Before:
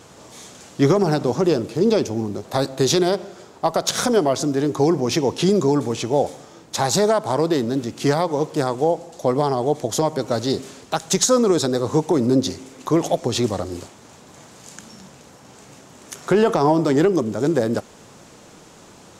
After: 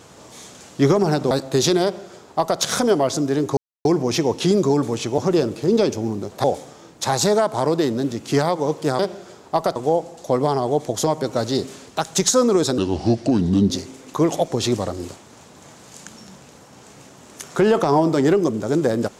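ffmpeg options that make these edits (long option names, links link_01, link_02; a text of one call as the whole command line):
ffmpeg -i in.wav -filter_complex "[0:a]asplit=9[link_01][link_02][link_03][link_04][link_05][link_06][link_07][link_08][link_09];[link_01]atrim=end=1.312[link_10];[link_02]atrim=start=2.568:end=4.83,asetpts=PTS-STARTPTS,afade=type=out:start_time=2.258:duration=0.004:curve=hsin,apad=pad_dur=0.28[link_11];[link_03]atrim=start=4.83:end=6.162,asetpts=PTS-STARTPTS,afade=type=in:duration=0.004:curve=hsin[link_12];[link_04]atrim=start=1.308:end=2.572[link_13];[link_05]atrim=start=6.158:end=8.712[link_14];[link_06]atrim=start=3.088:end=3.862[link_15];[link_07]atrim=start=8.708:end=11.734[link_16];[link_08]atrim=start=11.73:end=12.42,asetpts=PTS-STARTPTS,asetrate=33075,aresample=44100[link_17];[link_09]atrim=start=12.416[link_18];[link_11][link_12]concat=n=2:v=0:a=1[link_19];[link_10][link_19]acrossfade=duration=0.004:curve1=hsin:curve2=hsin[link_20];[link_20][link_13]acrossfade=duration=0.004:curve1=hsin:curve2=hsin[link_21];[link_21][link_14]acrossfade=duration=0.004:curve1=hsin:curve2=hsin[link_22];[link_22][link_15]acrossfade=duration=0.004:curve1=hsin:curve2=hsin[link_23];[link_23][link_16]acrossfade=duration=0.004:curve1=hsin:curve2=hsin[link_24];[link_24][link_17]acrossfade=duration=0.004:curve1=hsin:curve2=hsin[link_25];[link_25][link_18]acrossfade=duration=0.004:curve1=hsin:curve2=hsin" out.wav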